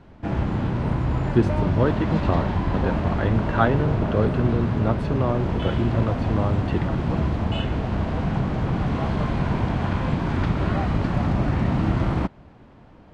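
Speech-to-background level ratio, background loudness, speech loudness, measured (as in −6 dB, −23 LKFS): −1.5 dB, −24.5 LKFS, −26.0 LKFS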